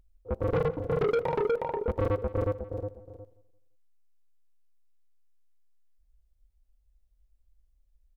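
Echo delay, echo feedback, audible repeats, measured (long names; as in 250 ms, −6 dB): 171 ms, 32%, 2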